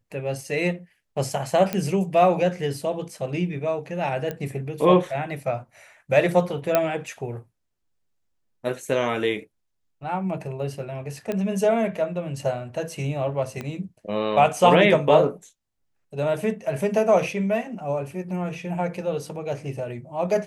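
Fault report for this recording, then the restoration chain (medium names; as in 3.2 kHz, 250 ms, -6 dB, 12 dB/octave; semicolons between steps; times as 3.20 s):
1.73 s: pop -11 dBFS
4.31 s: pop -16 dBFS
6.75 s: pop -5 dBFS
11.32 s: pop -15 dBFS
13.61 s: pop -18 dBFS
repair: de-click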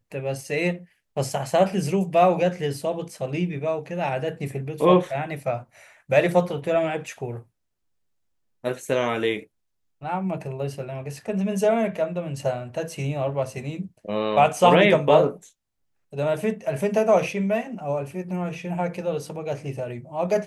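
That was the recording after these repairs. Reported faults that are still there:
13.61 s: pop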